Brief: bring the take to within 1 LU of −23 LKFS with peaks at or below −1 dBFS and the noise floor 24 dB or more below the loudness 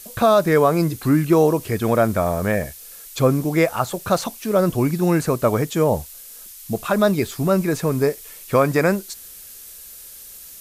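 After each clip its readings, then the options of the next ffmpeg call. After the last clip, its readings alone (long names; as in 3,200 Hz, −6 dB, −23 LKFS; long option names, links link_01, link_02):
background noise floor −40 dBFS; target noise floor −44 dBFS; integrated loudness −19.5 LKFS; sample peak −5.5 dBFS; target loudness −23.0 LKFS
→ -af "afftdn=noise_reduction=6:noise_floor=-40"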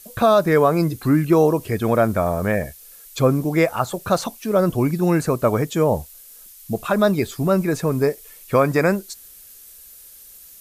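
background noise floor −45 dBFS; integrated loudness −19.5 LKFS; sample peak −5.5 dBFS; target loudness −23.0 LKFS
→ -af "volume=-3.5dB"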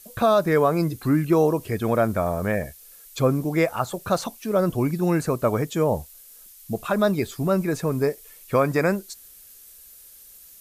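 integrated loudness −23.0 LKFS; sample peak −9.0 dBFS; background noise floor −48 dBFS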